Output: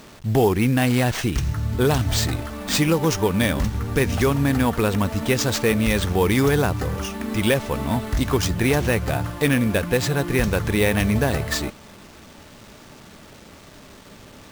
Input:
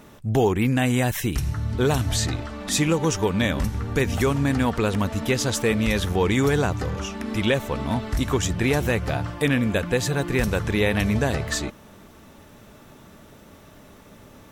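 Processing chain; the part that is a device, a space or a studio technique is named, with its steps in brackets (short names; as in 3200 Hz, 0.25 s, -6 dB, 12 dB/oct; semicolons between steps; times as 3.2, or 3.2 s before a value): early 8-bit sampler (sample-rate reducer 12000 Hz, jitter 0%; bit-crush 8-bit); gain +2 dB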